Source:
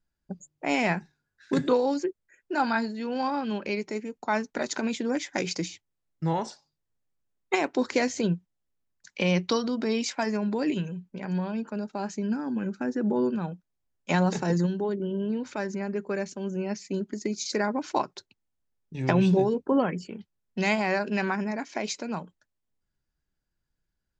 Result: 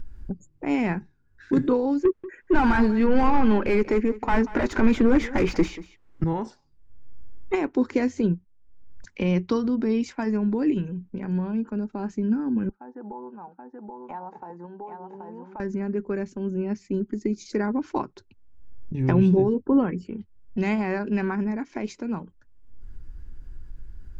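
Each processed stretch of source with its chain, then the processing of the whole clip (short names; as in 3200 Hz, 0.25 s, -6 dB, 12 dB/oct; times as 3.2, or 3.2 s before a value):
2.05–6.24 overdrive pedal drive 25 dB, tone 2000 Hz, clips at -12.5 dBFS + echo 0.186 s -17.5 dB
12.69–15.6 band-pass 850 Hz, Q 5.6 + echo 0.779 s -6.5 dB
whole clip: fifteen-band EQ 160 Hz -9 dB, 630 Hz -9 dB, 4000 Hz -4 dB; upward compressor, threshold -35 dBFS; tilt -4 dB/oct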